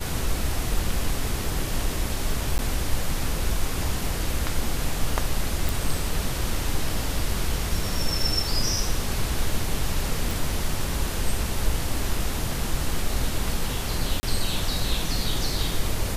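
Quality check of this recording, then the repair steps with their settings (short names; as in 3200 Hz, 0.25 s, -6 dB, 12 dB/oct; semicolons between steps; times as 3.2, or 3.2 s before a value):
2.58–2.59 gap 9.9 ms
5.69 pop
10.31 pop
14.2–14.23 gap 30 ms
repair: de-click; interpolate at 2.58, 9.9 ms; interpolate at 14.2, 30 ms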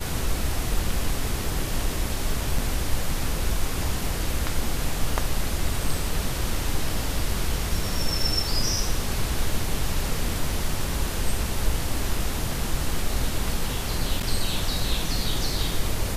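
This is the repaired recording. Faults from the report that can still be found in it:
none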